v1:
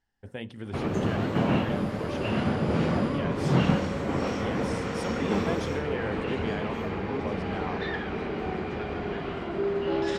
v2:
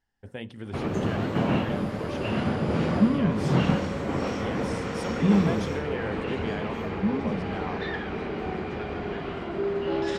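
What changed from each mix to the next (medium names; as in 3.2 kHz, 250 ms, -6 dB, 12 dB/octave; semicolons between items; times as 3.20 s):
second sound: add peaking EQ 180 Hz +13.5 dB 1.4 oct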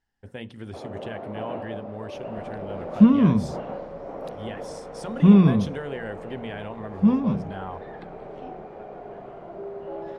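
first sound: add band-pass filter 630 Hz, Q 2.6; second sound +7.5 dB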